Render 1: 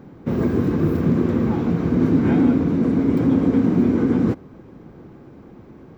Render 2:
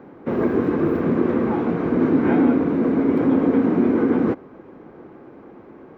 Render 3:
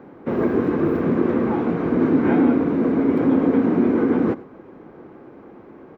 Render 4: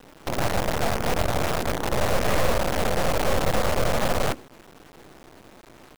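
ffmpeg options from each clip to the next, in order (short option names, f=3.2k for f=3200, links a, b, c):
-filter_complex "[0:a]acrossover=split=270 2700:gain=0.178 1 0.158[a][b][c];[a][b][c]amix=inputs=3:normalize=0,volume=4.5dB"
-af "aecho=1:1:95:0.106"
-af "acrusher=bits=4:dc=4:mix=0:aa=0.000001,aeval=exprs='abs(val(0))':c=same,volume=-4dB"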